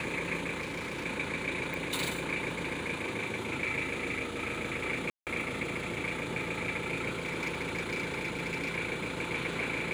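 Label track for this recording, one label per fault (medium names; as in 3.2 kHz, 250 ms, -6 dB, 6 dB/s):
0.600000	1.060000	clipped -33 dBFS
1.740000	1.740000	pop
5.100000	5.270000	dropout 168 ms
7.250000	8.760000	clipped -29 dBFS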